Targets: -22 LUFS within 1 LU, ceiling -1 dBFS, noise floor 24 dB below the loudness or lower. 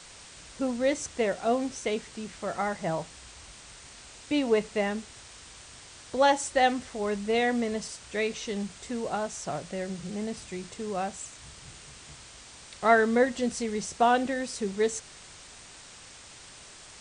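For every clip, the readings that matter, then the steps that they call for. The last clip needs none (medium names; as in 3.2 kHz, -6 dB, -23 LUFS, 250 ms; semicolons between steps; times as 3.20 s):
noise floor -49 dBFS; noise floor target -53 dBFS; loudness -29.0 LUFS; peak level -8.5 dBFS; loudness target -22.0 LUFS
-> noise reduction 6 dB, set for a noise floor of -49 dBFS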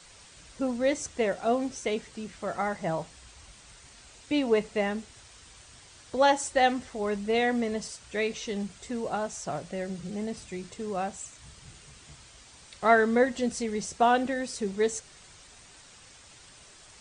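noise floor -53 dBFS; loudness -29.0 LUFS; peak level -8.5 dBFS; loudness target -22.0 LUFS
-> trim +7 dB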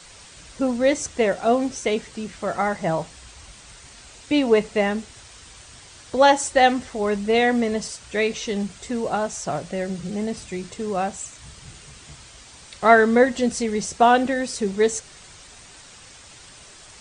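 loudness -22.0 LUFS; peak level -1.5 dBFS; noise floor -46 dBFS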